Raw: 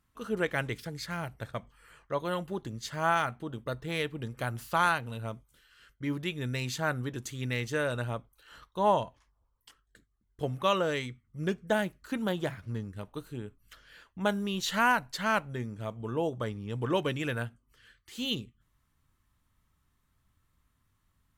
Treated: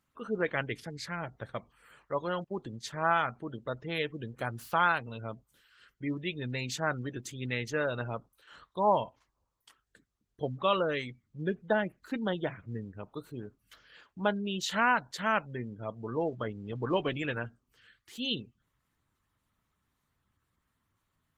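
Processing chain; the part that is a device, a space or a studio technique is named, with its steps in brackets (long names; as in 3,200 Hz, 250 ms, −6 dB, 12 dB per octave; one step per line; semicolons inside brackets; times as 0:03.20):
0:02.44–0:03.07: noise gate −42 dBFS, range −27 dB
noise-suppressed video call (high-pass filter 140 Hz 6 dB per octave; gate on every frequency bin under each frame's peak −25 dB strong; Opus 16 kbit/s 48,000 Hz)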